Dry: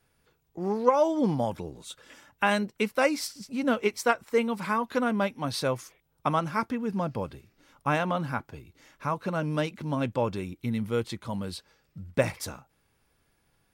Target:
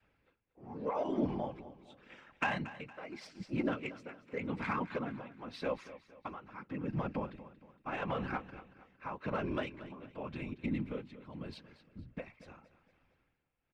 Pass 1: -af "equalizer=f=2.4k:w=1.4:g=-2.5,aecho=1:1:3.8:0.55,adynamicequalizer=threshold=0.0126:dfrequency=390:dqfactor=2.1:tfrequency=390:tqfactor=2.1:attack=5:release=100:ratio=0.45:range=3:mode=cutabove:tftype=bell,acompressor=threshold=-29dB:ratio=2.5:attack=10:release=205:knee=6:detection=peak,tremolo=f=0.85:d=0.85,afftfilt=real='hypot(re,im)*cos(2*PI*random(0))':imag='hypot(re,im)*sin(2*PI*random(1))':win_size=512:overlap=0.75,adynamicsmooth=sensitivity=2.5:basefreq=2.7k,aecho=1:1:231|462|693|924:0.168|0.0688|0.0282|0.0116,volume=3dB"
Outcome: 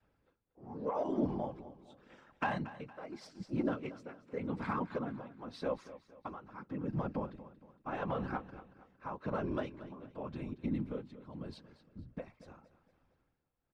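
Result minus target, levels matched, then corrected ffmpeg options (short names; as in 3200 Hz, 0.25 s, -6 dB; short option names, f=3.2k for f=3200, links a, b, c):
2000 Hz band -4.5 dB
-af "equalizer=f=2.4k:w=1.4:g=8,aecho=1:1:3.8:0.55,adynamicequalizer=threshold=0.0126:dfrequency=390:dqfactor=2.1:tfrequency=390:tqfactor=2.1:attack=5:release=100:ratio=0.45:range=3:mode=cutabove:tftype=bell,acompressor=threshold=-29dB:ratio=2.5:attack=10:release=205:knee=6:detection=peak,tremolo=f=0.85:d=0.85,afftfilt=real='hypot(re,im)*cos(2*PI*random(0))':imag='hypot(re,im)*sin(2*PI*random(1))':win_size=512:overlap=0.75,adynamicsmooth=sensitivity=2.5:basefreq=2.7k,aecho=1:1:231|462|693|924:0.168|0.0688|0.0282|0.0116,volume=3dB"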